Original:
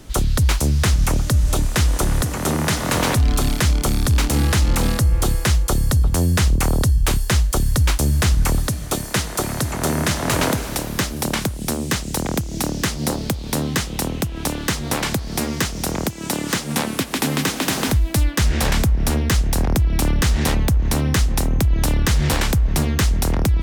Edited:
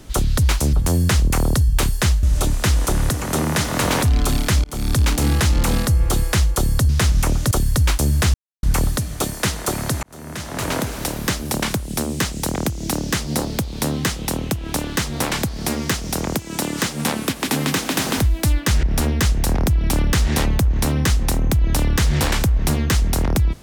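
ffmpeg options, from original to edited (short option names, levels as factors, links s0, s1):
-filter_complex "[0:a]asplit=9[s0][s1][s2][s3][s4][s5][s6][s7][s8];[s0]atrim=end=0.732[s9];[s1]atrim=start=6.008:end=7.512[s10];[s2]atrim=start=1.348:end=3.76,asetpts=PTS-STARTPTS,afade=t=out:st=2.408:d=0.004:c=hsin[s11];[s3]atrim=start=3.76:end=6.012,asetpts=PTS-STARTPTS,afade=t=in:d=0.27[s12];[s4]atrim=start=0.728:end=1.352[s13];[s5]atrim=start=7.508:end=8.34,asetpts=PTS-STARTPTS,afade=t=out:st=0.828:d=0.004:c=hsin,apad=pad_dur=0.29[s14];[s6]atrim=start=8.34:end=9.74,asetpts=PTS-STARTPTS,afade=t=in:d=0.004:c=hsin,afade=t=out:st=1.396:d=0.004:c=hsin[s15];[s7]atrim=start=9.74:end=18.542,asetpts=PTS-STARTPTS,afade=t=in:d=1.09[s16];[s8]atrim=start=18.918[s17];[s9][s10]acrossfade=d=0.004:c1=hsin:c2=hsin[s18];[s11][s12]concat=n=2:v=0:a=1[s19];[s18][s19]acrossfade=d=0.004:c1=hsin:c2=hsin[s20];[s20][s13]acrossfade=d=0.004:c1=hsin:c2=hsin[s21];[s14][s15][s16]concat=n=3:v=0:a=1[s22];[s21][s22]acrossfade=d=0.004:c1=hsin:c2=hsin[s23];[s23][s17]acrossfade=d=0.004:c1=hsin:c2=hsin"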